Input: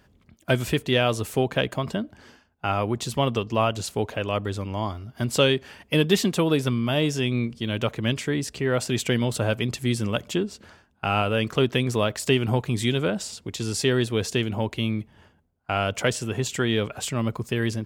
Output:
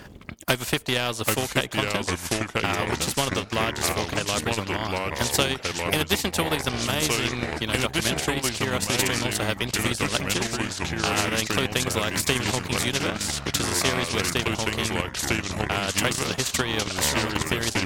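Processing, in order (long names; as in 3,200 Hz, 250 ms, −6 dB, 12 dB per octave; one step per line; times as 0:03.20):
harmonic generator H 2 −17 dB, 4 −23 dB, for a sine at −5.5 dBFS
in parallel at +0.5 dB: downward compressor, threshold −35 dBFS, peak gain reduction 19.5 dB
on the sum: delay with pitch and tempo change per echo 688 ms, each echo −3 semitones, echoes 3
transient designer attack +8 dB, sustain −10 dB
every bin compressed towards the loudest bin 2 to 1
level −5 dB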